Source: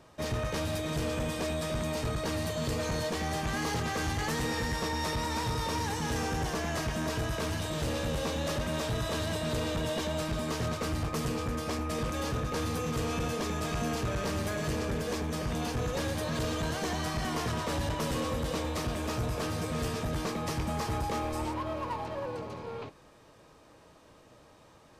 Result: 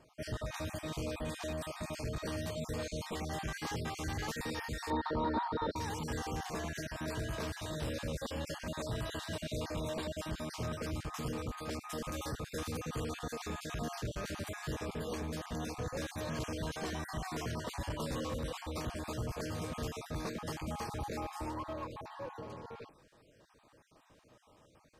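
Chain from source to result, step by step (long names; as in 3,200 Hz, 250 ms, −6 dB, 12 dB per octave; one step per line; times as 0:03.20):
time-frequency cells dropped at random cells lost 31%
0:04.90–0:05.76: drawn EQ curve 140 Hz 0 dB, 210 Hz +7 dB, 330 Hz +9 dB, 1,500 Hz +5 dB, 2,600 Hz −14 dB, 4,100 Hz +1 dB, 6,200 Hz −29 dB
0:07.39–0:07.91: surface crackle 230 per second −54 dBFS
0:11.81–0:12.72: high-shelf EQ 8,500 Hz +7 dB
level −5.5 dB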